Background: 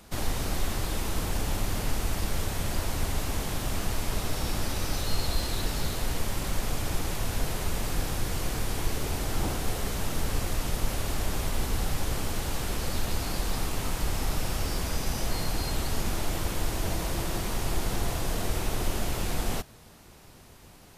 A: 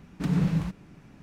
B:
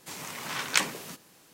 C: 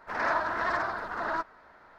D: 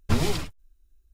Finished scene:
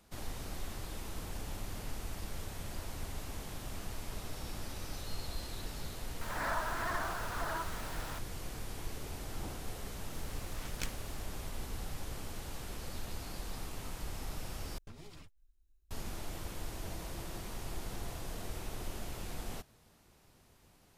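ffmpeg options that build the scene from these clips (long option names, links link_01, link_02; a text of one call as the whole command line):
ffmpeg -i bed.wav -i cue0.wav -i cue1.wav -i cue2.wav -i cue3.wav -filter_complex "[0:a]volume=-12.5dB[link_01];[3:a]aeval=exprs='val(0)+0.5*0.0299*sgn(val(0))':channel_layout=same[link_02];[2:a]aeval=exprs='max(val(0),0)':channel_layout=same[link_03];[4:a]acompressor=threshold=-34dB:ratio=20:attack=2:release=281:knee=1:detection=peak[link_04];[link_01]asplit=2[link_05][link_06];[link_05]atrim=end=14.784[link_07];[link_04]atrim=end=1.13,asetpts=PTS-STARTPTS,volume=-9.5dB[link_08];[link_06]atrim=start=15.906[link_09];[link_02]atrim=end=1.98,asetpts=PTS-STARTPTS,volume=-10.5dB,afade=type=in:duration=0.004:curve=hsin,afade=type=out:start_time=1.976:duration=0.004:curve=hsin,adelay=6210[link_10];[link_03]atrim=end=1.53,asetpts=PTS-STARTPTS,volume=-14dB,afade=type=in:duration=0.004:curve=hsin,afade=type=out:start_time=1.526:duration=0.004:curve=hsin,adelay=10060[link_11];[link_07][link_08]acrossfade=duration=0.004:curve1=hsin:curve2=hsin[link_12];[link_12][link_09]acrossfade=duration=0.004:curve1=hsin:curve2=hsin[link_13];[link_13][link_10][link_11]amix=inputs=3:normalize=0" out.wav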